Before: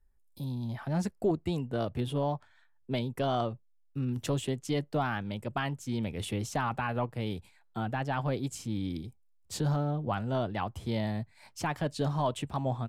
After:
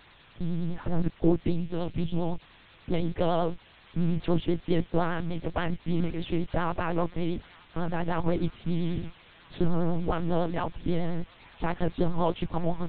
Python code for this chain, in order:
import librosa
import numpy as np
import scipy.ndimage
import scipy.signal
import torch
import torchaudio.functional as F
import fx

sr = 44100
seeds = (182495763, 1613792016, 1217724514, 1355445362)

y = scipy.signal.sosfilt(scipy.signal.butter(2, 120.0, 'highpass', fs=sr, output='sos'), x)
y = fx.low_shelf(y, sr, hz=450.0, db=10.0)
y = fx.quant_dither(y, sr, seeds[0], bits=8, dither='triangular')
y = fx.spec_box(y, sr, start_s=1.51, length_s=0.91, low_hz=220.0, high_hz=2100.0, gain_db=-6)
y = fx.lpc_monotone(y, sr, seeds[1], pitch_hz=170.0, order=8)
y = fx.echo_wet_highpass(y, sr, ms=929, feedback_pct=77, hz=1700.0, wet_db=-18)
y = fx.vibrato(y, sr, rate_hz=10.0, depth_cents=94.0)